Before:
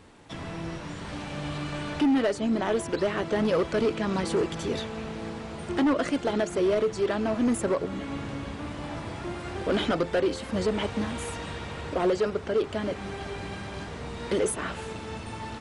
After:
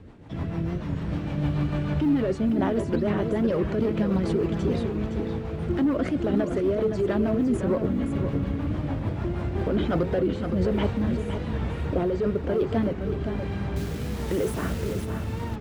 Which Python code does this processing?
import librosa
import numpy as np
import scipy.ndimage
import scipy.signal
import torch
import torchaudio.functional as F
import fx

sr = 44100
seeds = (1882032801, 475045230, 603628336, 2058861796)

p1 = fx.highpass(x, sr, hz=95.0, slope=6)
p2 = fx.riaa(p1, sr, side='playback')
p3 = fx.over_compress(p2, sr, threshold_db=-23.0, ratio=-0.5)
p4 = p2 + (p3 * librosa.db_to_amplitude(-1.0))
p5 = fx.quant_float(p4, sr, bits=6)
p6 = fx.rotary_switch(p5, sr, hz=6.7, then_hz=1.1, switch_at_s=9.11)
p7 = fx.quant_dither(p6, sr, seeds[0], bits=6, dither='none', at=(13.76, 15.05))
p8 = p7 + fx.echo_single(p7, sr, ms=515, db=-7.5, dry=0)
p9 = fx.record_warp(p8, sr, rpm=45.0, depth_cents=100.0)
y = p9 * librosa.db_to_amplitude(-5.0)